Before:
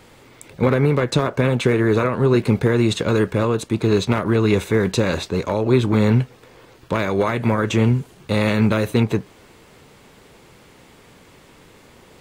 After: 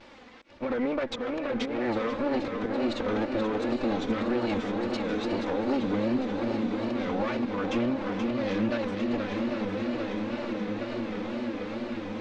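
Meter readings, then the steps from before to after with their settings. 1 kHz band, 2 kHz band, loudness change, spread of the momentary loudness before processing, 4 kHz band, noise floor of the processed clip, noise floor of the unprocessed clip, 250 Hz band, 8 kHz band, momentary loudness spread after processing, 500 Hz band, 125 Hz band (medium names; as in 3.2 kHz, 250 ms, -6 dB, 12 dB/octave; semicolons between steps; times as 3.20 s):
-7.0 dB, -9.0 dB, -10.5 dB, 5 LU, -9.0 dB, -44 dBFS, -49 dBFS, -7.0 dB, under -15 dB, 5 LU, -9.5 dB, -20.0 dB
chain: comb filter that takes the minimum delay 3.7 ms; echo that smears into a reverb 913 ms, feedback 66%, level -10 dB; slow attack 239 ms; on a send: shuffle delay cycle 802 ms, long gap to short 1.5:1, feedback 55%, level -8 dB; on the sum: wow and flutter 140 cents; low-pass 5.8 kHz 24 dB/octave; tone controls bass -6 dB, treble -4 dB; compression 2.5:1, threshold -31 dBFS, peak gain reduction 12 dB; peaking EQ 240 Hz +4 dB 0.36 oct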